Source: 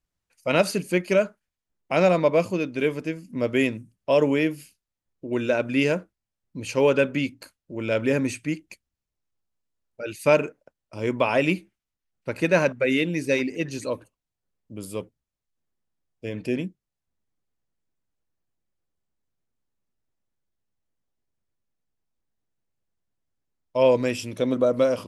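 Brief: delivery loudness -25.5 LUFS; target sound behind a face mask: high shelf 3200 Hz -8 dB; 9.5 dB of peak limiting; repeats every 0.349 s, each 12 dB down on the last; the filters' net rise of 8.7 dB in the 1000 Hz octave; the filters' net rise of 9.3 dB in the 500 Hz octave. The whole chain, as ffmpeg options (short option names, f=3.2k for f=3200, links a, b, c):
-af "equalizer=f=500:t=o:g=8.5,equalizer=f=1k:t=o:g=9,alimiter=limit=-8dB:level=0:latency=1,highshelf=f=3.2k:g=-8,aecho=1:1:349|698|1047:0.251|0.0628|0.0157,volume=-4.5dB"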